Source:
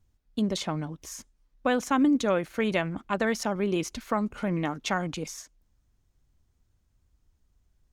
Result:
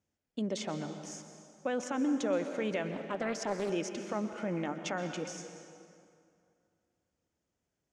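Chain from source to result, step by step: peak limiter -20.5 dBFS, peak gain reduction 7.5 dB; cabinet simulation 200–7900 Hz, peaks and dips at 560 Hz +5 dB, 1.1 kHz -5 dB, 4 kHz -8 dB; plate-style reverb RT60 2.4 s, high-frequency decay 0.7×, pre-delay 110 ms, DRR 7.5 dB; 2.91–3.70 s: loudspeaker Doppler distortion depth 0.39 ms; trim -4 dB

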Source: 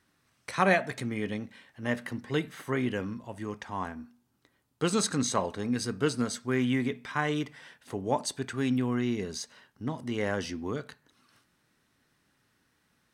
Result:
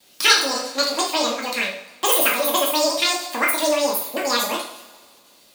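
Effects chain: wide varispeed 2.37×; treble shelf 2.3 kHz +9 dB; in parallel at +3 dB: compression, threshold -36 dBFS, peak gain reduction 19.5 dB; on the sum: gate with hold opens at -48 dBFS; two-slope reverb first 0.5 s, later 1.9 s, from -18 dB, DRR -3 dB

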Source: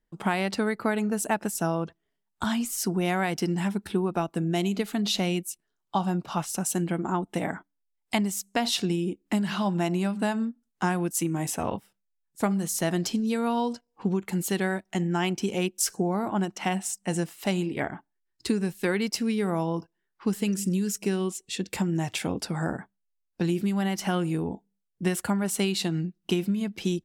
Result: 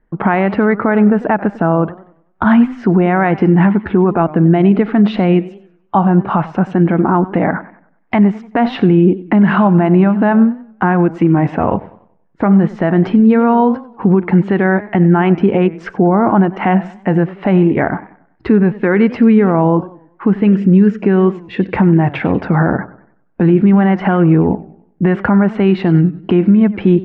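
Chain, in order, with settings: low-pass 1.9 kHz 24 dB/octave; loudness maximiser +20.5 dB; modulated delay 95 ms, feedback 39%, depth 163 cents, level -18 dB; trim -1.5 dB

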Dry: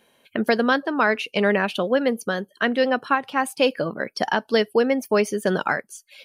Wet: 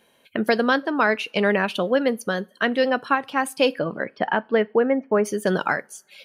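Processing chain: 3.78–5.24 s: low-pass 3.6 kHz -> 1.7 kHz 24 dB/octave; two-slope reverb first 0.29 s, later 2.2 s, from -28 dB, DRR 19 dB

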